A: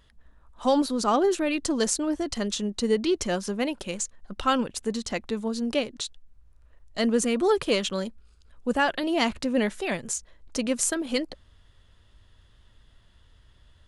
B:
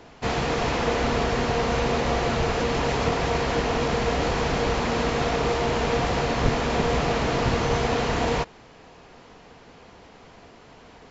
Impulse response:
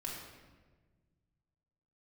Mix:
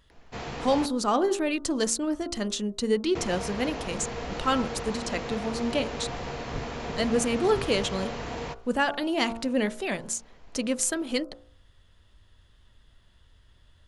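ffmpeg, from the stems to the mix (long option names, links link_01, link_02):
-filter_complex "[0:a]volume=-1dB[link_01];[1:a]adelay=100,volume=-10.5dB,asplit=3[link_02][link_03][link_04];[link_02]atrim=end=0.86,asetpts=PTS-STARTPTS,afade=type=out:start_time=0.856:duration=0.004:curve=hsin[link_05];[link_03]atrim=start=0.86:end=3.15,asetpts=PTS-STARTPTS,volume=0[link_06];[link_04]atrim=start=3.15,asetpts=PTS-STARTPTS,afade=type=in:duration=0.004:curve=hsin[link_07];[link_05][link_06][link_07]concat=n=3:v=0:a=1[link_08];[link_01][link_08]amix=inputs=2:normalize=0,bandreject=frequency=57.21:width_type=h:width=4,bandreject=frequency=114.42:width_type=h:width=4,bandreject=frequency=171.63:width_type=h:width=4,bandreject=frequency=228.84:width_type=h:width=4,bandreject=frequency=286.05:width_type=h:width=4,bandreject=frequency=343.26:width_type=h:width=4,bandreject=frequency=400.47:width_type=h:width=4,bandreject=frequency=457.68:width_type=h:width=4,bandreject=frequency=514.89:width_type=h:width=4,bandreject=frequency=572.1:width_type=h:width=4,bandreject=frequency=629.31:width_type=h:width=4,bandreject=frequency=686.52:width_type=h:width=4,bandreject=frequency=743.73:width_type=h:width=4,bandreject=frequency=800.94:width_type=h:width=4,bandreject=frequency=858.15:width_type=h:width=4,bandreject=frequency=915.36:width_type=h:width=4,bandreject=frequency=972.57:width_type=h:width=4,bandreject=frequency=1029.78:width_type=h:width=4,bandreject=frequency=1086.99:width_type=h:width=4,bandreject=frequency=1144.2:width_type=h:width=4,bandreject=frequency=1201.41:width_type=h:width=4,bandreject=frequency=1258.62:width_type=h:width=4,bandreject=frequency=1315.83:width_type=h:width=4,bandreject=frequency=1373.04:width_type=h:width=4,bandreject=frequency=1430.25:width_type=h:width=4,bandreject=frequency=1487.46:width_type=h:width=4"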